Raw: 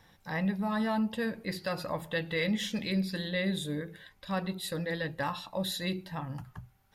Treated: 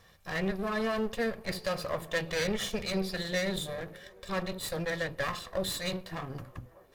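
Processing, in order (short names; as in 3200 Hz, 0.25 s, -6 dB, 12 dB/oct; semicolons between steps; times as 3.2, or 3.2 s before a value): minimum comb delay 1.7 ms; band-limited delay 0.597 s, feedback 69%, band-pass 620 Hz, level -22.5 dB; gain +2.5 dB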